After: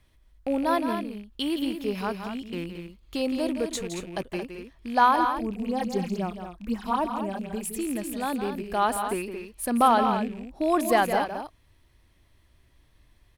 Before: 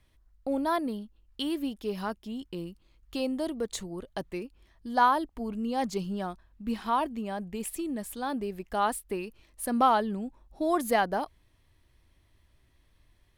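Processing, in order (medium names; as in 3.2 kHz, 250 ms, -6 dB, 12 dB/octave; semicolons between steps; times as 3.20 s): rattle on loud lows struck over -41 dBFS, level -35 dBFS; 5.16–7.73 s: phase shifter stages 6, 3.9 Hz, lowest notch 100–4300 Hz; loudspeakers at several distances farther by 57 m -9 dB, 77 m -9 dB; trim +3 dB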